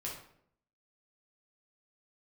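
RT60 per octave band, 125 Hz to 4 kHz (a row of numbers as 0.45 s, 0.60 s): 0.80 s, 0.80 s, 0.75 s, 0.60 s, 0.55 s, 0.45 s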